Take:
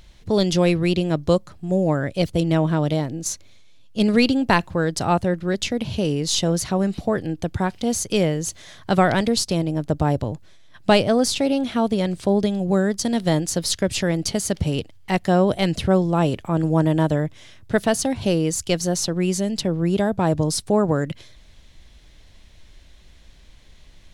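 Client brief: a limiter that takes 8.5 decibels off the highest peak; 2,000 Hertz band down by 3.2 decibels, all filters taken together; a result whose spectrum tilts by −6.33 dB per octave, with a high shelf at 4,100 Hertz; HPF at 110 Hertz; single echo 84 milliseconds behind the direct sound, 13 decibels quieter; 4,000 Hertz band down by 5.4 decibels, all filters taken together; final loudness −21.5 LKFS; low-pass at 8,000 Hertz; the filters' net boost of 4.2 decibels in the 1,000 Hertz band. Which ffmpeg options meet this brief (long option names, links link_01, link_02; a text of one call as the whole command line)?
ffmpeg -i in.wav -af "highpass=110,lowpass=8000,equalizer=frequency=1000:width_type=o:gain=7,equalizer=frequency=2000:width_type=o:gain=-5.5,equalizer=frequency=4000:width_type=o:gain=-3.5,highshelf=frequency=4100:gain=-3,alimiter=limit=-9.5dB:level=0:latency=1,aecho=1:1:84:0.224,volume=1dB" out.wav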